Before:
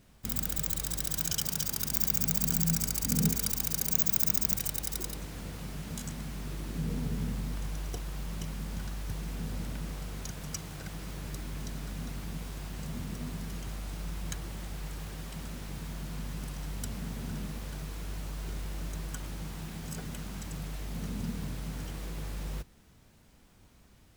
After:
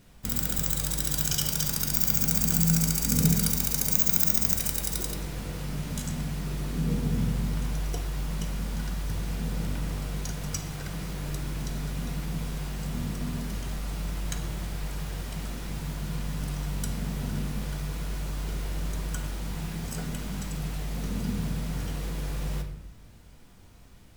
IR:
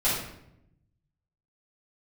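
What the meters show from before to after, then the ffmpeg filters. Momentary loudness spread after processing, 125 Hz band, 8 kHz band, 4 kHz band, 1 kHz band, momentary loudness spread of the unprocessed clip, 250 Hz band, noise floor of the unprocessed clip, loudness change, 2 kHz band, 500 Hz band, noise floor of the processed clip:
13 LU, +6.5 dB, +4.5 dB, +4.5 dB, +5.0 dB, 14 LU, +6.0 dB, −59 dBFS, +5.0 dB, +5.0 dB, +5.5 dB, −50 dBFS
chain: -filter_complex "[0:a]asplit=2[link_01][link_02];[1:a]atrim=start_sample=2205,asetrate=41895,aresample=44100[link_03];[link_02][link_03]afir=irnorm=-1:irlink=0,volume=-15.5dB[link_04];[link_01][link_04]amix=inputs=2:normalize=0,volume=2.5dB"

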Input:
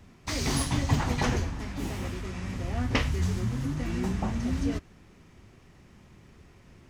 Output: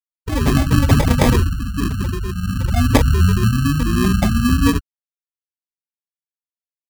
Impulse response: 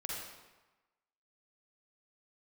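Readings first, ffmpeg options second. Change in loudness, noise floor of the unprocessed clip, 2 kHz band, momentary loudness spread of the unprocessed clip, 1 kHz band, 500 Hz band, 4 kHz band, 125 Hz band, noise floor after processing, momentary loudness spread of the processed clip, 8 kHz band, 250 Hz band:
+13.0 dB, −56 dBFS, +10.0 dB, 8 LU, +11.0 dB, +12.0 dB, +9.0 dB, +13.5 dB, below −85 dBFS, 9 LU, +8.0 dB, +13.0 dB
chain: -filter_complex "[0:a]afftfilt=real='re*gte(hypot(re,im),0.0794)':imag='im*gte(hypot(re,im),0.0794)':win_size=1024:overlap=0.75,asplit=2[link_01][link_02];[link_02]adynamicsmooth=sensitivity=7:basefreq=1200,volume=-1dB[link_03];[link_01][link_03]amix=inputs=2:normalize=0,acrusher=samples=31:mix=1:aa=0.000001,alimiter=level_in=9.5dB:limit=-1dB:release=50:level=0:latency=1,volume=-1dB"

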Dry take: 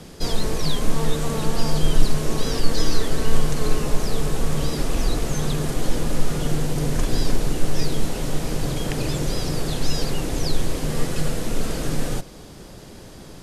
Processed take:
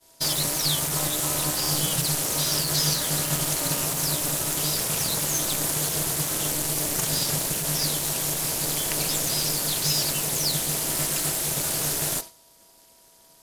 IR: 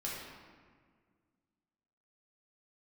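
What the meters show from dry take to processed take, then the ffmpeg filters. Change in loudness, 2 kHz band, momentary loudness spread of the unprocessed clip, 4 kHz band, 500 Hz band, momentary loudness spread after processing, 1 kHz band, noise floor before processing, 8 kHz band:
+3.0 dB, +1.0 dB, 3 LU, +5.0 dB, −5.5 dB, 2 LU, −1.0 dB, −41 dBFS, +10.5 dB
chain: -af "aemphasis=mode=production:type=riaa,aeval=exprs='val(0)+0.00562*sin(2*PI*810*n/s)':channel_layout=same,aeval=exprs='(tanh(7.94*val(0)+0.55)-tanh(0.55))/7.94':channel_layout=same,agate=range=-33dB:threshold=-30dB:ratio=3:detection=peak,aeval=exprs='val(0)*sin(2*PI*150*n/s)':channel_layout=same,volume=4dB"

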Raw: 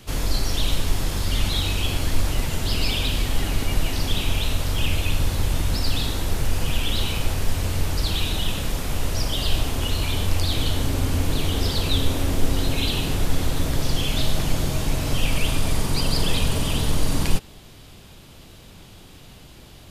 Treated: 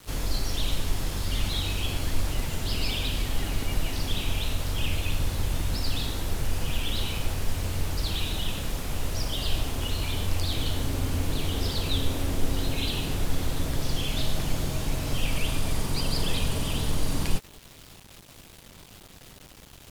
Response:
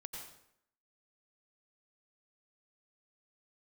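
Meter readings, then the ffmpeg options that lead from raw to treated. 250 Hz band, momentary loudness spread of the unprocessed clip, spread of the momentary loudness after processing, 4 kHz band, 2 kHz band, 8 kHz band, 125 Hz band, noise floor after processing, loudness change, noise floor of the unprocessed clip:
−5.5 dB, 3 LU, 19 LU, −5.0 dB, −5.0 dB, −5.0 dB, −5.5 dB, −50 dBFS, −5.0 dB, −45 dBFS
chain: -filter_complex "[0:a]acrusher=bits=6:mix=0:aa=0.000001[link_01];[1:a]atrim=start_sample=2205,atrim=end_sample=3528,asetrate=37926,aresample=44100[link_02];[link_01][link_02]afir=irnorm=-1:irlink=0"

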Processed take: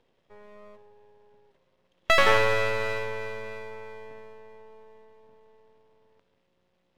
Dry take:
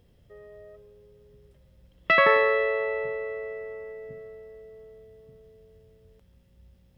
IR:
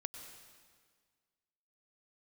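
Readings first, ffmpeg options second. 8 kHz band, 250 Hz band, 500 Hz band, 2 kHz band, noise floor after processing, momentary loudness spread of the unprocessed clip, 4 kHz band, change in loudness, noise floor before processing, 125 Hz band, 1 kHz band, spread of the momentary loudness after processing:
can't be measured, +2.0 dB, −2.5 dB, −1.5 dB, −72 dBFS, 22 LU, +6.5 dB, −1.0 dB, −60 dBFS, +9.5 dB, −0.5 dB, 22 LU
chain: -filter_complex "[0:a]highpass=330,lowpass=3700,asplit=2[link_01][link_02];[1:a]atrim=start_sample=2205[link_03];[link_02][link_03]afir=irnorm=-1:irlink=0,volume=-4.5dB[link_04];[link_01][link_04]amix=inputs=2:normalize=0,aeval=exprs='max(val(0),0)':channel_layout=same"

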